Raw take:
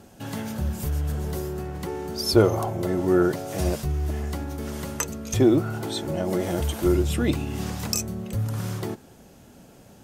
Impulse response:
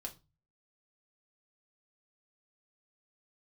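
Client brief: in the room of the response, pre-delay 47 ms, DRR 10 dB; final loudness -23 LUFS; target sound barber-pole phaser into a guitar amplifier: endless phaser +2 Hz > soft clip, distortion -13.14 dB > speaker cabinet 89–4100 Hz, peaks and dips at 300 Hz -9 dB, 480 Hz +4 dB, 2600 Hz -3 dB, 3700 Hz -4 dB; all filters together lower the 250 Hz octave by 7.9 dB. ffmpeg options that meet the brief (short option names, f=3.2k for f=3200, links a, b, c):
-filter_complex "[0:a]equalizer=f=250:t=o:g=-8.5,asplit=2[a][b];[1:a]atrim=start_sample=2205,adelay=47[c];[b][c]afir=irnorm=-1:irlink=0,volume=-7dB[d];[a][d]amix=inputs=2:normalize=0,asplit=2[e][f];[f]afreqshift=2[g];[e][g]amix=inputs=2:normalize=1,asoftclip=threshold=-22dB,highpass=89,equalizer=f=300:t=q:w=4:g=-9,equalizer=f=480:t=q:w=4:g=4,equalizer=f=2.6k:t=q:w=4:g=-3,equalizer=f=3.7k:t=q:w=4:g=-4,lowpass=f=4.1k:w=0.5412,lowpass=f=4.1k:w=1.3066,volume=11.5dB"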